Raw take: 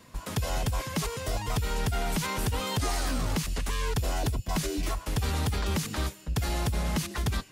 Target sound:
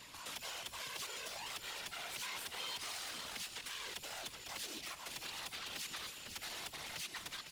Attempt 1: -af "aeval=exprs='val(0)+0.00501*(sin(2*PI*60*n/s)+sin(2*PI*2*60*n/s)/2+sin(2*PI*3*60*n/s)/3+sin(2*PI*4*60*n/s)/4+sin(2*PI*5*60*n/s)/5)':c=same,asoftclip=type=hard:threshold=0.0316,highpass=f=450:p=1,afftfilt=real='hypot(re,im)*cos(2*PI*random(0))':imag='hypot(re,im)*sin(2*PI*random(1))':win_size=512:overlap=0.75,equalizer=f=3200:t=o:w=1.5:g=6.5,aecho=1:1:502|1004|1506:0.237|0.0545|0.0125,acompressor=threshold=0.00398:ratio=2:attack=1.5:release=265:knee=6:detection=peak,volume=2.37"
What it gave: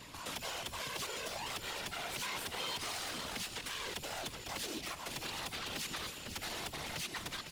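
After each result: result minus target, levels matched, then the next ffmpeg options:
500 Hz band +5.0 dB; compression: peak gain reduction -2.5 dB
-af "aeval=exprs='val(0)+0.00501*(sin(2*PI*60*n/s)+sin(2*PI*2*60*n/s)/2+sin(2*PI*3*60*n/s)/3+sin(2*PI*4*60*n/s)/4+sin(2*PI*5*60*n/s)/5)':c=same,asoftclip=type=hard:threshold=0.0316,highpass=f=1300:p=1,afftfilt=real='hypot(re,im)*cos(2*PI*random(0))':imag='hypot(re,im)*sin(2*PI*random(1))':win_size=512:overlap=0.75,equalizer=f=3200:t=o:w=1.5:g=6.5,aecho=1:1:502|1004|1506:0.237|0.0545|0.0125,acompressor=threshold=0.00398:ratio=2:attack=1.5:release=265:knee=6:detection=peak,volume=2.37"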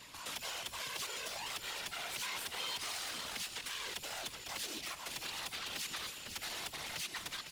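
compression: peak gain reduction -3.5 dB
-af "aeval=exprs='val(0)+0.00501*(sin(2*PI*60*n/s)+sin(2*PI*2*60*n/s)/2+sin(2*PI*3*60*n/s)/3+sin(2*PI*4*60*n/s)/4+sin(2*PI*5*60*n/s)/5)':c=same,asoftclip=type=hard:threshold=0.0316,highpass=f=1300:p=1,afftfilt=real='hypot(re,im)*cos(2*PI*random(0))':imag='hypot(re,im)*sin(2*PI*random(1))':win_size=512:overlap=0.75,equalizer=f=3200:t=o:w=1.5:g=6.5,aecho=1:1:502|1004|1506:0.237|0.0545|0.0125,acompressor=threshold=0.00188:ratio=2:attack=1.5:release=265:knee=6:detection=peak,volume=2.37"

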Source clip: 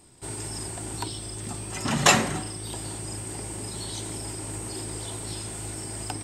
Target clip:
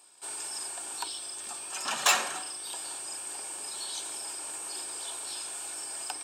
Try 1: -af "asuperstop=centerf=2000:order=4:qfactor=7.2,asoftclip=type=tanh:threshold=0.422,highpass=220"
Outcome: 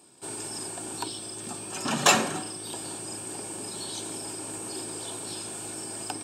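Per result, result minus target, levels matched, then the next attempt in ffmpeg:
250 Hz band +15.5 dB; saturation: distortion -8 dB
-af "asuperstop=centerf=2000:order=4:qfactor=7.2,asoftclip=type=tanh:threshold=0.422,highpass=830"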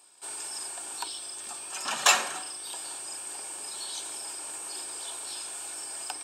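saturation: distortion -8 dB
-af "asuperstop=centerf=2000:order=4:qfactor=7.2,asoftclip=type=tanh:threshold=0.178,highpass=830"

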